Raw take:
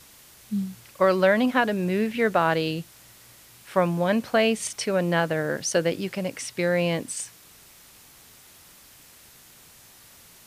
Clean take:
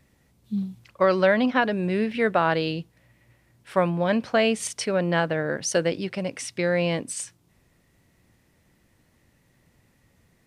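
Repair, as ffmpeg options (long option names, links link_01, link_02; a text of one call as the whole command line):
ffmpeg -i in.wav -af "afwtdn=0.0032" out.wav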